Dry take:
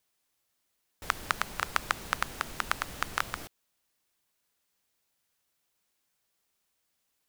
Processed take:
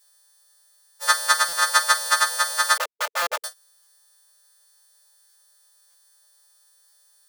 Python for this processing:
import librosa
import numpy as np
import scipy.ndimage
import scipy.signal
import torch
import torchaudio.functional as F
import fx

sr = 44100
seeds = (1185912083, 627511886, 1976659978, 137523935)

p1 = fx.freq_snap(x, sr, grid_st=2)
p2 = p1 + fx.room_early_taps(p1, sr, ms=(16, 46), db=(-7.5, -16.0), dry=0)
p3 = fx.schmitt(p2, sr, flips_db=-26.0, at=(2.77, 3.44))
p4 = fx.brickwall_highpass(p3, sr, low_hz=450.0)
p5 = p4 + 0.93 * np.pad(p4, (int(3.4 * sr / 1000.0), 0))[:len(p4)]
p6 = fx.buffer_glitch(p5, sr, at_s=(1.48, 3.22, 3.82, 5.29, 5.9, 6.88), block=256, repeats=7)
y = p6 * librosa.db_to_amplitude(5.0)